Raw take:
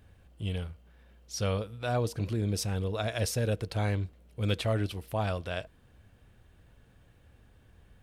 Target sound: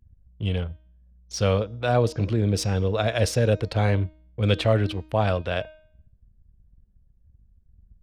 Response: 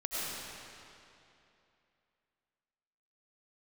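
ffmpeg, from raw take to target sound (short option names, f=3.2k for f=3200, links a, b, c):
-filter_complex "[0:a]anlmdn=0.0251,acrossover=split=220|4600[a][b][c];[c]adynamicsmooth=sensitivity=6:basefreq=6.9k[d];[a][b][d]amix=inputs=3:normalize=0,adynamicequalizer=threshold=0.00501:dfrequency=540:dqfactor=2.8:tfrequency=540:tqfactor=2.8:attack=5:release=100:ratio=0.375:range=1.5:mode=boostabove:tftype=bell,bandreject=f=311.5:t=h:w=4,bandreject=f=623:t=h:w=4,bandreject=f=934.5:t=h:w=4,bandreject=f=1.246k:t=h:w=4,bandreject=f=1.5575k:t=h:w=4,bandreject=f=1.869k:t=h:w=4,bandreject=f=2.1805k:t=h:w=4,bandreject=f=2.492k:t=h:w=4,bandreject=f=2.8035k:t=h:w=4,bandreject=f=3.115k:t=h:w=4,bandreject=f=3.4265k:t=h:w=4,bandreject=f=3.738k:t=h:w=4,bandreject=f=4.0495k:t=h:w=4,bandreject=f=4.361k:t=h:w=4,bandreject=f=4.6725k:t=h:w=4,bandreject=f=4.984k:t=h:w=4,bandreject=f=5.2955k:t=h:w=4,bandreject=f=5.607k:t=h:w=4,bandreject=f=5.9185k:t=h:w=4,bandreject=f=6.23k:t=h:w=4,bandreject=f=6.5415k:t=h:w=4,bandreject=f=6.853k:t=h:w=4,bandreject=f=7.1645k:t=h:w=4,bandreject=f=7.476k:t=h:w=4,volume=7.5dB"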